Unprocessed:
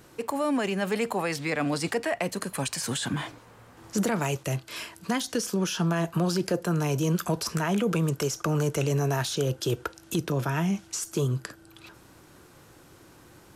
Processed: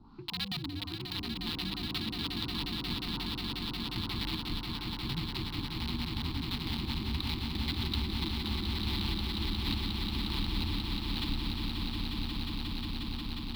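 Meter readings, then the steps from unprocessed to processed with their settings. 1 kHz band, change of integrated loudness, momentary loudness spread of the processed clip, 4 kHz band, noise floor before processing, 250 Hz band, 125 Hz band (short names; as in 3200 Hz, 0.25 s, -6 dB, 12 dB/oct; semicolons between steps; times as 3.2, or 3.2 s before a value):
-10.0 dB, -6.5 dB, 4 LU, +3.5 dB, -54 dBFS, -7.5 dB, -7.5 dB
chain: compressor 4:1, threshold -38 dBFS, peak gain reduction 14.5 dB; band noise 2500–7300 Hz -56 dBFS; LFO low-pass sine 1.3 Hz 350–1600 Hz; band shelf 2600 Hz -13.5 dB 1.3 oct; notches 50/100/150/200/250/300/350/400/450 Hz; wrapped overs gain 29.5 dB; EQ curve 390 Hz 0 dB, 690 Hz -27 dB, 1000 Hz -5 dB, 1600 Hz -11 dB, 4200 Hz +12 dB, 6500 Hz -16 dB, 14000 Hz -6 dB; swelling echo 0.179 s, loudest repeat 8, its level -6.5 dB; frequency shift -100 Hz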